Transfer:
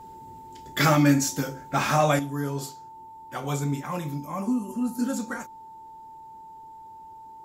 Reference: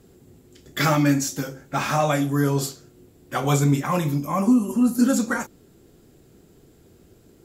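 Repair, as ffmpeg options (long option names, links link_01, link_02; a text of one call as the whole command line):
ffmpeg -i in.wav -af "bandreject=frequency=890:width=30,asetnsamples=nb_out_samples=441:pad=0,asendcmd='2.19 volume volume 8.5dB',volume=0dB" out.wav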